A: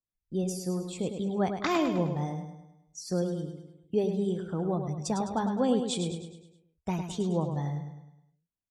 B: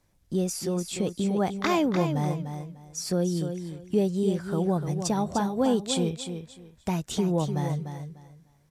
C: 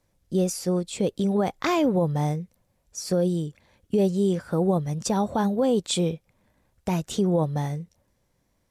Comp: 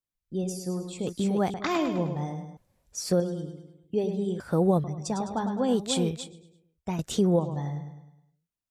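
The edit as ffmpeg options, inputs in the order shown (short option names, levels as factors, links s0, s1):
-filter_complex "[1:a]asplit=2[s0][s1];[2:a]asplit=3[s2][s3][s4];[0:a]asplit=6[s5][s6][s7][s8][s9][s10];[s5]atrim=end=1.072[s11];[s0]atrim=start=1.068:end=1.542[s12];[s6]atrim=start=1.538:end=2.572[s13];[s2]atrim=start=2.568:end=3.202[s14];[s7]atrim=start=3.198:end=4.402[s15];[s3]atrim=start=4.398:end=4.842[s16];[s8]atrim=start=4.838:end=5.76[s17];[s1]atrim=start=5.66:end=6.3[s18];[s9]atrim=start=6.2:end=6.992[s19];[s4]atrim=start=6.988:end=7.392[s20];[s10]atrim=start=7.388[s21];[s11][s12]acrossfade=d=0.004:c1=hsin:c2=hsin[s22];[s22][s13]acrossfade=d=0.004:c1=hsin:c2=hsin[s23];[s23][s14]acrossfade=d=0.004:c1=hsin:c2=hsin[s24];[s24][s15]acrossfade=d=0.004:c1=hsin:c2=hsin[s25];[s25][s16]acrossfade=d=0.004:c1=hsin:c2=hsin[s26];[s26][s17]acrossfade=d=0.004:c1=hsin:c2=hsin[s27];[s27][s18]acrossfade=d=0.1:c1=tri:c2=tri[s28];[s28][s19]acrossfade=d=0.1:c1=tri:c2=tri[s29];[s29][s20]acrossfade=d=0.004:c1=hsin:c2=hsin[s30];[s30][s21]acrossfade=d=0.004:c1=hsin:c2=hsin"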